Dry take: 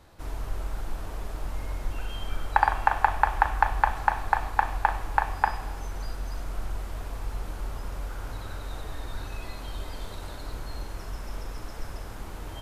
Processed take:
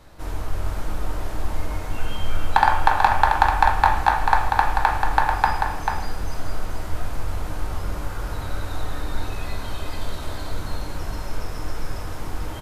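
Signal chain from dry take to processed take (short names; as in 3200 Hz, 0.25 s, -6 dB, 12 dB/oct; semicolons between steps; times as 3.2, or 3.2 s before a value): overloaded stage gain 9 dB; echo 0.44 s -5.5 dB; shoebox room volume 110 m³, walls mixed, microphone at 0.52 m; gain +4.5 dB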